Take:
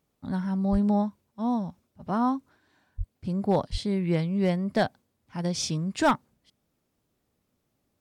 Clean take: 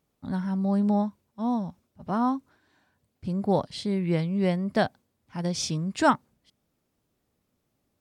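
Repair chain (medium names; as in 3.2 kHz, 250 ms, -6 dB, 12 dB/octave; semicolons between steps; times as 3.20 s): clip repair -15 dBFS; de-plosive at 0.71/2.97/3.71 s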